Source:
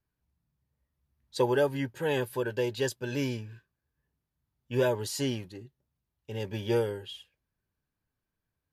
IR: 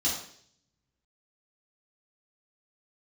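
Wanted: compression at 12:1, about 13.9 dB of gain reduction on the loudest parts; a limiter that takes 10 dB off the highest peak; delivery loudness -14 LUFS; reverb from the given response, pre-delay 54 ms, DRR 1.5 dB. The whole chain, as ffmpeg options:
-filter_complex "[0:a]acompressor=threshold=-35dB:ratio=12,alimiter=level_in=11dB:limit=-24dB:level=0:latency=1,volume=-11dB,asplit=2[a][b];[1:a]atrim=start_sample=2205,adelay=54[c];[b][c]afir=irnorm=-1:irlink=0,volume=-9dB[d];[a][d]amix=inputs=2:normalize=0,volume=28dB"

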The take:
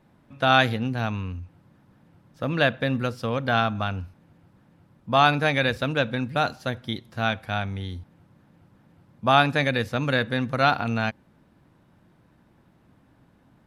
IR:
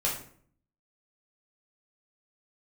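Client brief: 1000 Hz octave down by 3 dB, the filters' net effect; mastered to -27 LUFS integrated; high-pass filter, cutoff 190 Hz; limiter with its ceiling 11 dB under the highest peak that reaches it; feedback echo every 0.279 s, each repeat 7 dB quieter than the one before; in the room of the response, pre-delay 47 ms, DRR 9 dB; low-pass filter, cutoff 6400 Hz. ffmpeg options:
-filter_complex "[0:a]highpass=190,lowpass=6.4k,equalizer=f=1k:t=o:g=-4.5,alimiter=limit=-15.5dB:level=0:latency=1,aecho=1:1:279|558|837|1116|1395:0.447|0.201|0.0905|0.0407|0.0183,asplit=2[a][b];[1:a]atrim=start_sample=2205,adelay=47[c];[b][c]afir=irnorm=-1:irlink=0,volume=-16.5dB[d];[a][d]amix=inputs=2:normalize=0,volume=2dB"

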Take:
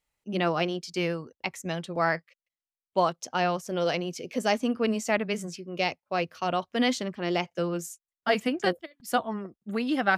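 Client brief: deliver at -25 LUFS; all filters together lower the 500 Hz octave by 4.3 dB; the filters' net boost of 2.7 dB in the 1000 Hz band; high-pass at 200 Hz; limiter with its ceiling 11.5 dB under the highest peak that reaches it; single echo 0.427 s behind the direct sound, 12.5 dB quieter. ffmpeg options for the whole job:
-af "highpass=200,equalizer=f=500:t=o:g=-8.5,equalizer=f=1k:t=o:g=7.5,alimiter=limit=-18dB:level=0:latency=1,aecho=1:1:427:0.237,volume=7.5dB"

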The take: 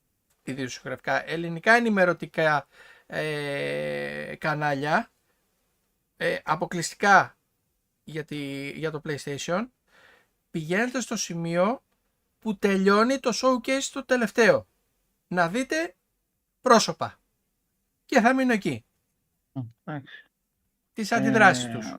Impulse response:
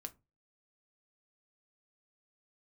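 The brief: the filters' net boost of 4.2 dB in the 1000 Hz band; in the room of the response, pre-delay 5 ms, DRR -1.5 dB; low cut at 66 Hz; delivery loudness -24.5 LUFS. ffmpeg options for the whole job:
-filter_complex "[0:a]highpass=66,equalizer=f=1k:t=o:g=6,asplit=2[a][b];[1:a]atrim=start_sample=2205,adelay=5[c];[b][c]afir=irnorm=-1:irlink=0,volume=5.5dB[d];[a][d]amix=inputs=2:normalize=0,volume=-6dB"

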